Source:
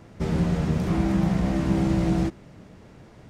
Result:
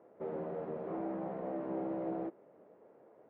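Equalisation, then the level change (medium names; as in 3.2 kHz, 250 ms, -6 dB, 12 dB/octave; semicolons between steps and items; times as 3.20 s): ladder band-pass 590 Hz, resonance 40%; distance through air 240 m; +3.5 dB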